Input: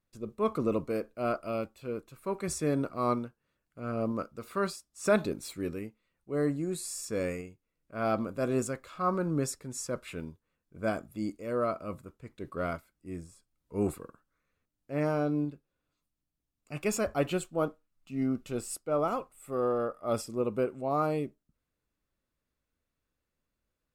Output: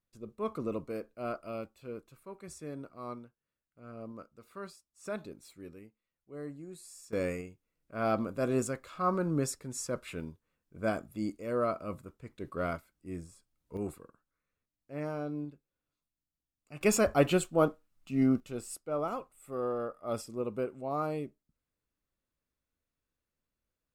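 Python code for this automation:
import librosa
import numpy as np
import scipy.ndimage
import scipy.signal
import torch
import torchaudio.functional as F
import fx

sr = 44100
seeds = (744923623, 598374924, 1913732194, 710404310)

y = fx.gain(x, sr, db=fx.steps((0.0, -6.0), (2.23, -13.0), (7.13, -0.5), (13.77, -7.5), (16.81, 4.0), (18.4, -4.5)))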